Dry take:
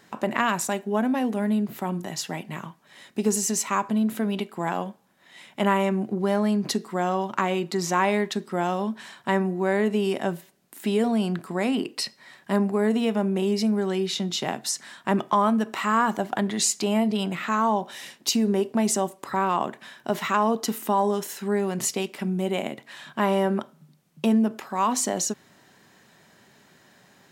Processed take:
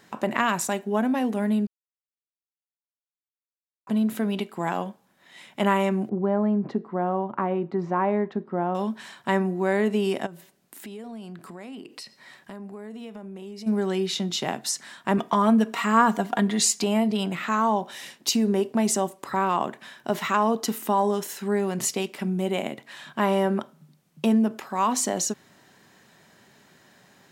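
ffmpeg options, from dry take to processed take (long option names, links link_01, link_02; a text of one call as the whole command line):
ffmpeg -i in.wav -filter_complex "[0:a]asettb=1/sr,asplit=3[link_01][link_02][link_03];[link_01]atrim=end=6.094[link_04];[link_02]atrim=start=6.09:end=8.75,asetpts=PTS-STARTPTS,afade=type=in:duration=0.004:curve=qsin,afade=type=out:start_time=2.656:duration=0.004:curve=qsin,lowpass=1100[link_05];[link_03]atrim=start=8.746[link_06];[link_04][link_05]acrossfade=duration=0.004:curve1=hsin:curve2=qsin[link_07];[link_07][link_06]acrossfade=duration=0.004:curve1=qsin:curve2=hsin,asplit=3[link_08][link_09][link_10];[link_08]afade=type=out:start_time=10.25:duration=0.02[link_11];[link_09]acompressor=threshold=-39dB:ratio=4:attack=3.2:release=140:knee=1:detection=peak,afade=type=in:start_time=10.25:duration=0.02,afade=type=out:start_time=13.66:duration=0.02[link_12];[link_10]afade=type=in:start_time=13.66:duration=0.02[link_13];[link_11][link_12][link_13]amix=inputs=3:normalize=0,asettb=1/sr,asplit=3[link_14][link_15][link_16];[link_14]atrim=end=15.174[link_17];[link_15]atrim=start=15.17:end=16.84,asetpts=PTS-STARTPTS,afade=type=in:duration=0.004:curve=qsin,afade=type=out:start_time=1.666:duration=0.004:curve=qsin,aecho=1:1:4.3:0.61,atrim=end_sample=73647[link_18];[link_16]atrim=start=16.836[link_19];[link_17][link_18]acrossfade=duration=0.004:curve1=hsin:curve2=qsin[link_20];[link_20][link_19]acrossfade=duration=0.004:curve1=qsin:curve2=hsin,asplit=3[link_21][link_22][link_23];[link_21]atrim=end=1.67,asetpts=PTS-STARTPTS,afade=type=out:start_time=1.666:duration=0.004:curve=hsin[link_24];[link_22]atrim=start=1.67:end=3.87,asetpts=PTS-STARTPTS,volume=0[link_25];[link_23]atrim=start=3.87,asetpts=PTS-STARTPTS,afade=type=in:duration=0.004:curve=hsin[link_26];[link_24][link_25][link_26]concat=n=3:v=0:a=1" out.wav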